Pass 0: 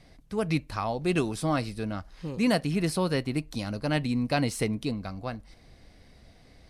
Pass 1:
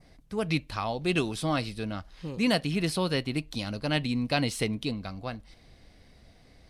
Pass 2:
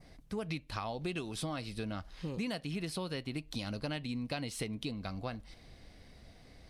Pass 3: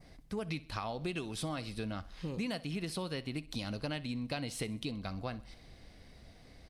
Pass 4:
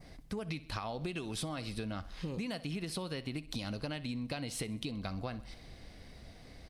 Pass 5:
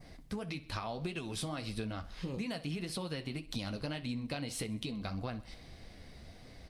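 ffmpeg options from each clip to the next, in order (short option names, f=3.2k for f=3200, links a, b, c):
-af "adynamicequalizer=threshold=0.00282:dfrequency=3300:dqfactor=1.5:tfrequency=3300:tqfactor=1.5:attack=5:release=100:ratio=0.375:range=4:mode=boostabove:tftype=bell,volume=-1.5dB"
-af "acompressor=threshold=-34dB:ratio=10"
-af "aecho=1:1:64|128|192|256:0.106|0.0519|0.0254|0.0125"
-af "acompressor=threshold=-38dB:ratio=6,volume=3.5dB"
-af "flanger=delay=7.9:depth=7.1:regen=-49:speed=1.7:shape=triangular,volume=4dB"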